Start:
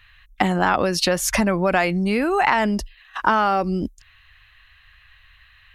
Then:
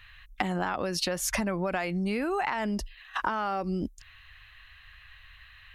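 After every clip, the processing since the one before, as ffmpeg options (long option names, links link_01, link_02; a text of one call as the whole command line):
ffmpeg -i in.wav -af "acompressor=threshold=-27dB:ratio=6" out.wav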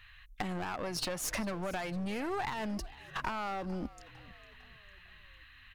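ffmpeg -i in.wav -filter_complex "[0:a]aeval=exprs='clip(val(0),-1,0.0237)':channel_layout=same,asplit=5[link_01][link_02][link_03][link_04][link_05];[link_02]adelay=453,afreqshift=-62,volume=-19.5dB[link_06];[link_03]adelay=906,afreqshift=-124,volume=-24.9dB[link_07];[link_04]adelay=1359,afreqshift=-186,volume=-30.2dB[link_08];[link_05]adelay=1812,afreqshift=-248,volume=-35.6dB[link_09];[link_01][link_06][link_07][link_08][link_09]amix=inputs=5:normalize=0,volume=-4dB" out.wav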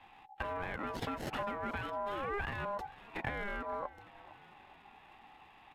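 ffmpeg -i in.wav -filter_complex "[0:a]aeval=exprs='val(0)*sin(2*PI*810*n/s)':channel_layout=same,acrossover=split=590|3300[link_01][link_02][link_03];[link_03]acrusher=samples=37:mix=1:aa=0.000001[link_04];[link_01][link_02][link_04]amix=inputs=3:normalize=0,volume=1dB" -ar 32000 -c:a aac -b:a 96k out.aac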